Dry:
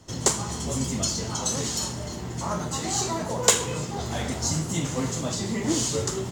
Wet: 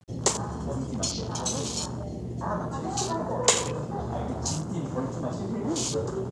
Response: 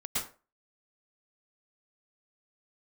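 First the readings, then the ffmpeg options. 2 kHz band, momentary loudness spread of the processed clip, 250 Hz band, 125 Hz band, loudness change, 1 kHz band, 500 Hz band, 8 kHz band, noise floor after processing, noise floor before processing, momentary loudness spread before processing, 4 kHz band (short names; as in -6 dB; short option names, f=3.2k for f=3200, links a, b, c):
-4.5 dB, 8 LU, -2.0 dB, -2.0 dB, -3.0 dB, -0.5 dB, -0.5 dB, -4.0 dB, -35 dBFS, -34 dBFS, 8 LU, -3.0 dB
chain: -filter_complex "[0:a]highshelf=f=7.4k:g=-5.5,acrossover=split=420|3000[a][b][c];[a]acompressor=threshold=-29dB:ratio=6[d];[d][b][c]amix=inputs=3:normalize=0,highpass=45,equalizer=f=1.5k:t=o:w=0.23:g=-7,asplit=5[e][f][g][h][i];[f]adelay=88,afreqshift=37,volume=-12.5dB[j];[g]adelay=176,afreqshift=74,volume=-19.6dB[k];[h]adelay=264,afreqshift=111,volume=-26.8dB[l];[i]adelay=352,afreqshift=148,volume=-33.9dB[m];[e][j][k][l][m]amix=inputs=5:normalize=0,afwtdn=0.0178,acrusher=bits=9:mix=0:aa=0.000001,lowpass=f=9.8k:w=0.5412,lowpass=f=9.8k:w=1.3066"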